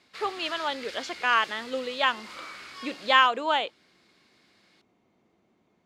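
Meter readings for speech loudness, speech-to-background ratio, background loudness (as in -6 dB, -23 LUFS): -26.0 LUFS, 16.0 dB, -42.0 LUFS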